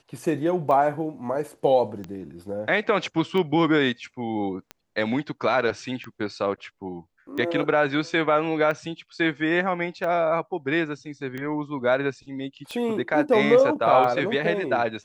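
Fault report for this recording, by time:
scratch tick 45 rpm −20 dBFS

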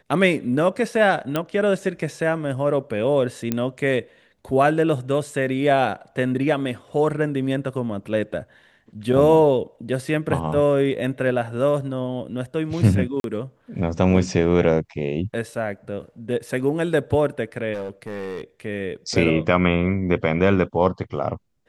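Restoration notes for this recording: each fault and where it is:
0:01.36: click −9 dBFS
0:03.52: click −9 dBFS
0:13.20–0:13.24: drop-out 42 ms
0:17.74–0:18.42: clipping −26 dBFS

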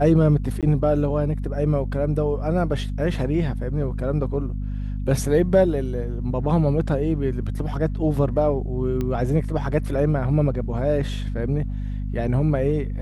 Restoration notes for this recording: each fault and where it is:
mains hum 50 Hz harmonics 5 −27 dBFS
0:00.61–0:00.63: drop-out 17 ms
0:09.01: click −15 dBFS

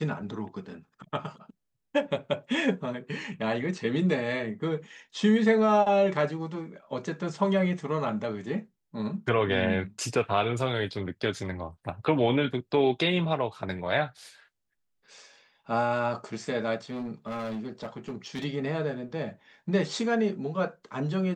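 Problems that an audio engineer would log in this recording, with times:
0:16.89–0:18.45: clipping −30.5 dBFS

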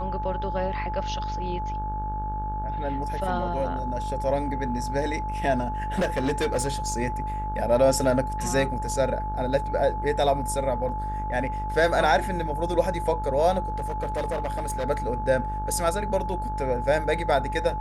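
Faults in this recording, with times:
mains buzz 50 Hz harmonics 34 −32 dBFS
whistle 860 Hz −30 dBFS
0:05.98–0:06.93: clipping −20 dBFS
0:10.89: drop-out 2.5 ms
0:13.74–0:14.84: clipping −23.5 dBFS

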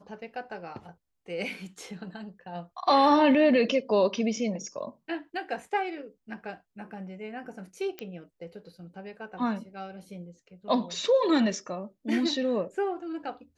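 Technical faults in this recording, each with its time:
0:07.99: click −21 dBFS

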